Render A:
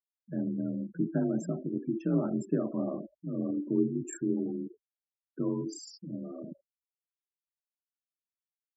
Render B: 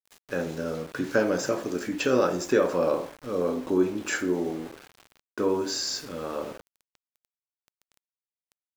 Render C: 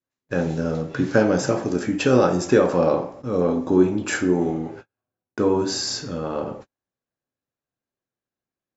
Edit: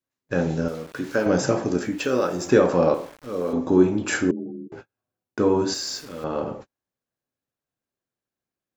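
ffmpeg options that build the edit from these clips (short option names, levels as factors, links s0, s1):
-filter_complex "[1:a]asplit=4[s0][s1][s2][s3];[2:a]asplit=6[s4][s5][s6][s7][s8][s9];[s4]atrim=end=0.682[s10];[s0]atrim=start=0.678:end=1.262[s11];[s5]atrim=start=1.258:end=2.01[s12];[s1]atrim=start=1.77:end=2.56[s13];[s6]atrim=start=2.32:end=2.942[s14];[s2]atrim=start=2.938:end=3.532[s15];[s7]atrim=start=3.528:end=4.312[s16];[0:a]atrim=start=4.308:end=4.722[s17];[s8]atrim=start=4.718:end=5.742[s18];[s3]atrim=start=5.738:end=6.242[s19];[s9]atrim=start=6.238[s20];[s10][s11]acrossfade=d=0.004:c1=hsin:c2=hsin[s21];[s21][s12]acrossfade=d=0.004:c1=hsin:c2=hsin[s22];[s22][s13]acrossfade=d=0.24:c1=tri:c2=tri[s23];[s23][s14]acrossfade=d=0.24:c1=tri:c2=tri[s24];[s24][s15]acrossfade=d=0.004:c1=hsin:c2=hsin[s25];[s25][s16]acrossfade=d=0.004:c1=hsin:c2=hsin[s26];[s26][s17]acrossfade=d=0.004:c1=hsin:c2=hsin[s27];[s27][s18]acrossfade=d=0.004:c1=hsin:c2=hsin[s28];[s28][s19]acrossfade=d=0.004:c1=hsin:c2=hsin[s29];[s29][s20]acrossfade=d=0.004:c1=hsin:c2=hsin"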